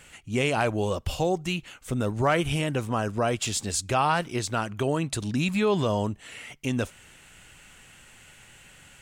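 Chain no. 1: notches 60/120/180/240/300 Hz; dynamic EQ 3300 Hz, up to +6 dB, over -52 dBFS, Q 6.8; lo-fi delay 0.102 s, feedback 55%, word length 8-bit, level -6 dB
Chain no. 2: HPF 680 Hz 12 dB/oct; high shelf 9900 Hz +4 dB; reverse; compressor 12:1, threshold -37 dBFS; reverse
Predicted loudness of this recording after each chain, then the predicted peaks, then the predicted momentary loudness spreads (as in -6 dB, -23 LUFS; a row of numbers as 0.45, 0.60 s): -26.0, -42.5 LUFS; -10.5, -24.0 dBFS; 9, 10 LU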